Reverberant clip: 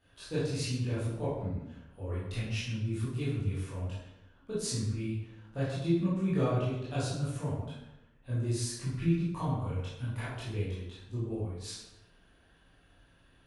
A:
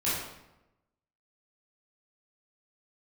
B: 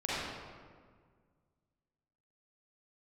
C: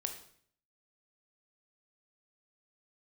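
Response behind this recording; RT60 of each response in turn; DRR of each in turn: A; 0.95, 1.8, 0.60 s; -10.5, -9.5, 5.0 dB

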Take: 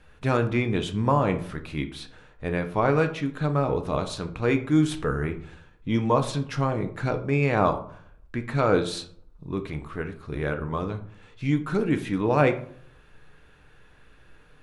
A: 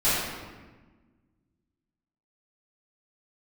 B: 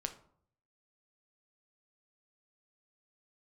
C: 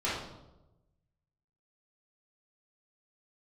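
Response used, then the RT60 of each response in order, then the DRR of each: B; 1.3, 0.60, 1.0 s; -16.0, 6.0, -10.0 dB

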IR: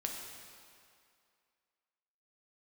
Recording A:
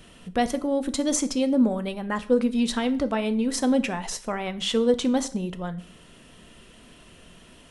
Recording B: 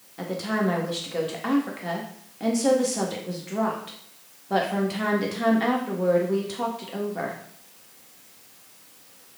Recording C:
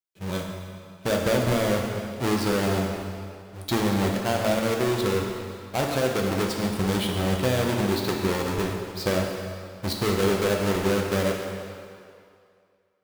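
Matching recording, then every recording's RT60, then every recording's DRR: C; 0.50, 0.65, 2.3 s; 10.0, -2.5, 0.0 dB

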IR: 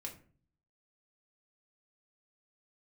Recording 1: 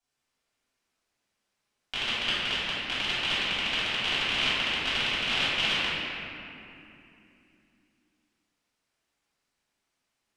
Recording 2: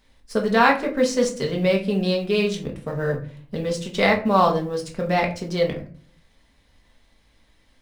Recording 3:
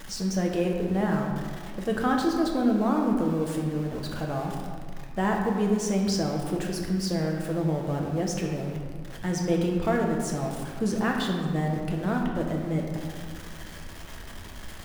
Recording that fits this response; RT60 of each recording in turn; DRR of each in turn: 2; 2.8, 0.45, 2.0 s; -12.5, 0.5, 0.0 dB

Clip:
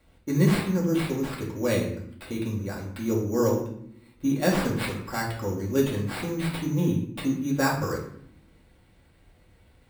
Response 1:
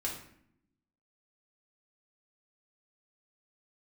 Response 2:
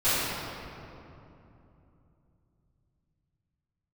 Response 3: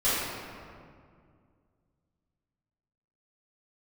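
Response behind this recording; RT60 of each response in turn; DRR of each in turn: 1; 0.65, 2.9, 2.2 s; -4.0, -17.5, -13.5 dB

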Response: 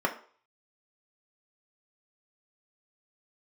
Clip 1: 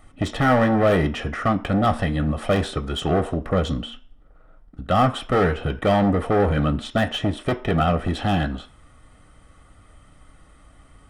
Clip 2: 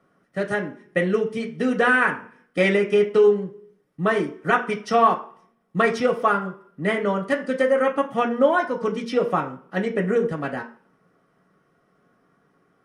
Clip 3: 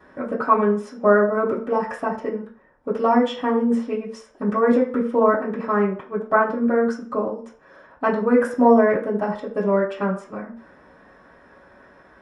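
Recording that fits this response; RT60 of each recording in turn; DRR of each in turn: 2; 0.45, 0.45, 0.45 s; 7.5, 1.5, -6.5 dB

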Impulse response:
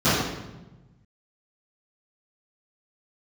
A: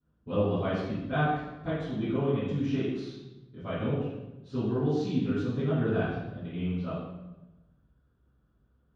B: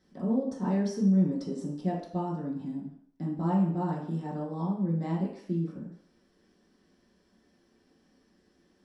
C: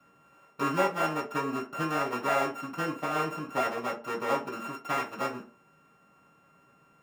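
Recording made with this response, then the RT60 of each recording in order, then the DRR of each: A; 1.1, 0.60, 0.45 s; -17.5, -8.0, -6.5 dB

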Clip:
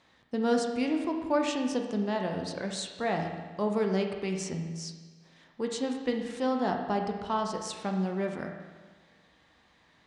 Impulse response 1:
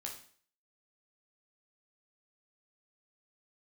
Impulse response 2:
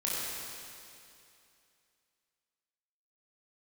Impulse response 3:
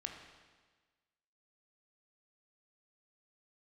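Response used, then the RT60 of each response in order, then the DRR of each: 3; 0.50, 2.6, 1.4 s; -0.5, -7.5, 2.5 dB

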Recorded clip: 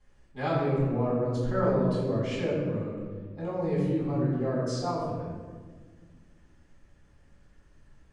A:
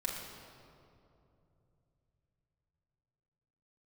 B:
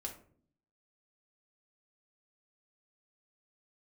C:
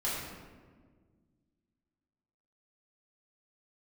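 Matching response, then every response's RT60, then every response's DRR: C; 2.8, 0.50, 1.6 s; -3.5, 0.0, -9.0 dB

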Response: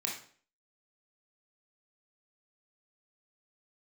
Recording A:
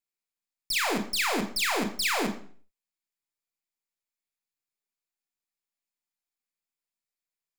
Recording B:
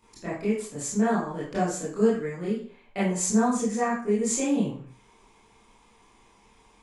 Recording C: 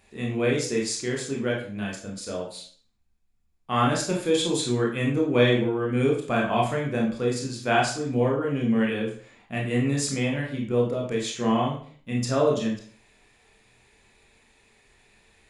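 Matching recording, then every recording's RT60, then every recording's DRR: C; 0.50, 0.50, 0.50 s; 4.5, -10.0, -2.0 dB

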